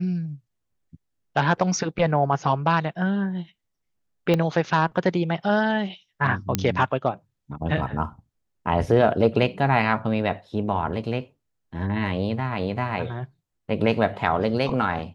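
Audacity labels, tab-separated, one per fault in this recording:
4.340000	4.340000	pop -10 dBFS
6.550000	6.550000	pop -5 dBFS

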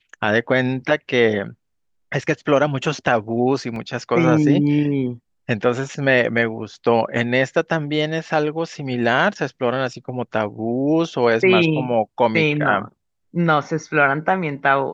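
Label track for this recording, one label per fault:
3.760000	3.760000	dropout 2.1 ms

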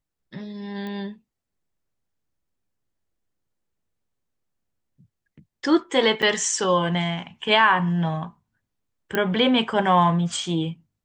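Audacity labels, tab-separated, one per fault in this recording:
0.870000	0.870000	pop -23 dBFS
6.220000	6.230000	dropout 6.8 ms
9.150000	9.150000	pop -10 dBFS

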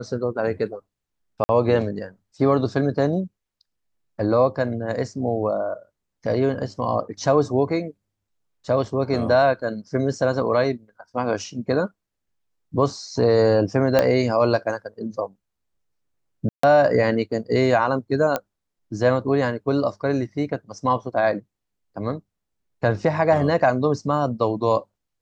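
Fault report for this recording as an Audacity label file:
1.440000	1.490000	dropout 50 ms
13.990000	13.990000	pop -5 dBFS
16.490000	16.630000	dropout 144 ms
18.360000	18.360000	pop -9 dBFS

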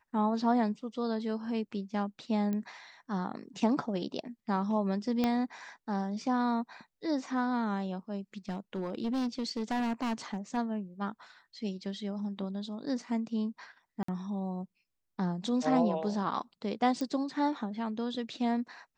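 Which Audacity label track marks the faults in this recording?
2.530000	2.530000	pop -23 dBFS
5.240000	5.240000	pop -16 dBFS
8.490000	10.580000	clipped -28.5 dBFS
14.030000	14.080000	dropout 54 ms
17.010000	17.010000	pop -22 dBFS

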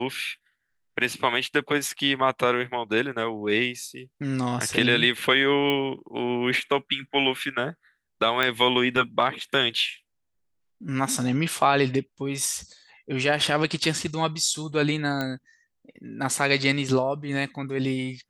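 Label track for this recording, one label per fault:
5.700000	5.700000	pop -13 dBFS
8.430000	8.430000	pop -10 dBFS
15.210000	15.210000	pop -15 dBFS

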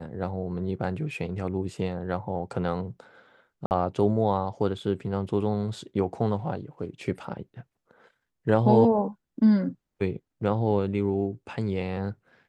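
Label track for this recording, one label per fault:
3.660000	3.710000	dropout 49 ms

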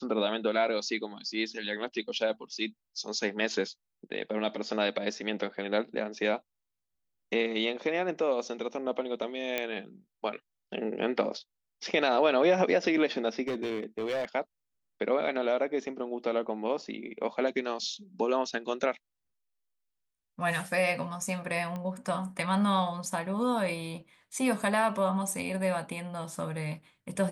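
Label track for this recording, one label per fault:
9.580000	9.580000	pop -14 dBFS
13.480000	14.250000	clipped -27.5 dBFS
21.760000	21.760000	pop -25 dBFS

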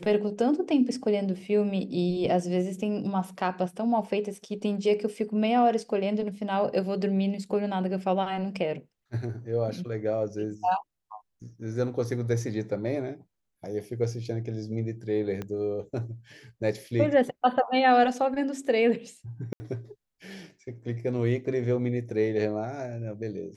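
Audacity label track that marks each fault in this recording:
15.420000	15.420000	pop -21 dBFS
19.530000	19.600000	dropout 70 ms

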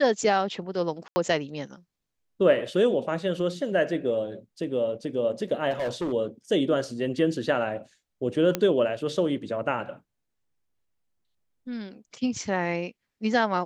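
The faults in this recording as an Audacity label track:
1.080000	1.160000	dropout 80 ms
5.700000	6.130000	clipped -25 dBFS
8.550000	8.550000	pop -10 dBFS

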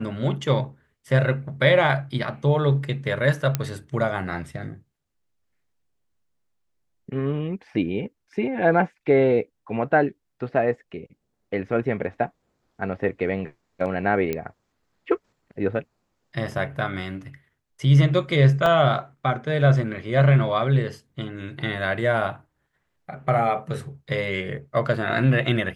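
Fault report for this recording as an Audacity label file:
3.550000	3.550000	pop -8 dBFS
14.330000	14.330000	pop -13 dBFS
18.660000	18.660000	dropout 2.1 ms

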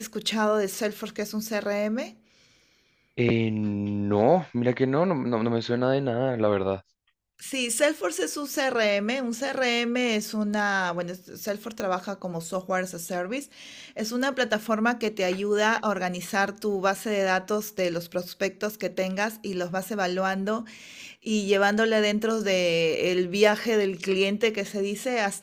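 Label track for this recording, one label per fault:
11.800000	11.800000	pop -15 dBFS

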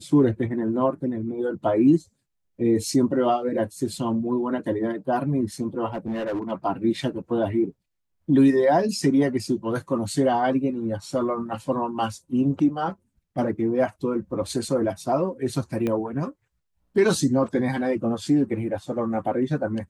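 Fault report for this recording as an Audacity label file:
5.940000	6.520000	clipped -24 dBFS
15.870000	15.870000	pop -15 dBFS

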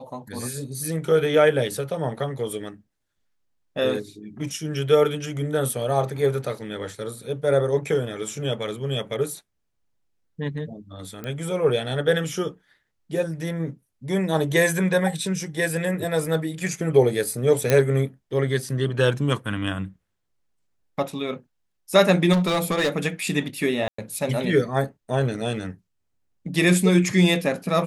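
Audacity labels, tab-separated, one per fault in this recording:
11.240000	11.240000	pop -19 dBFS
17.700000	17.700000	pop -5 dBFS
22.320000	22.900000	clipped -17.5 dBFS
23.880000	23.980000	dropout 104 ms

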